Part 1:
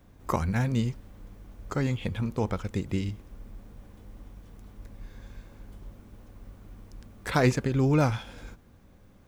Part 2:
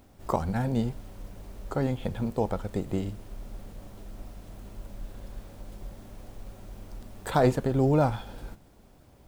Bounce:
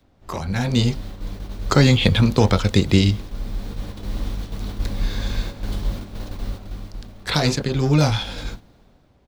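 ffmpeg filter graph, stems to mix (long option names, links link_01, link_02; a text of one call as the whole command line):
ffmpeg -i stem1.wav -i stem2.wav -filter_complex "[0:a]acrossover=split=180|3000[link_01][link_02][link_03];[link_02]acompressor=threshold=-28dB:ratio=6[link_04];[link_01][link_04][link_03]amix=inputs=3:normalize=0,equalizer=frequency=4100:width=1.5:gain=12.5,dynaudnorm=framelen=240:gausssize=7:maxgain=14.5dB,volume=-3.5dB[link_05];[1:a]lowpass=4400,asoftclip=type=tanh:threshold=-21dB,adelay=23,volume=-2.5dB,asplit=2[link_06][link_07];[link_07]apad=whole_len=408985[link_08];[link_05][link_08]sidechaingate=range=-10dB:threshold=-45dB:ratio=16:detection=peak[link_09];[link_09][link_06]amix=inputs=2:normalize=0,dynaudnorm=framelen=110:gausssize=11:maxgain=8dB" out.wav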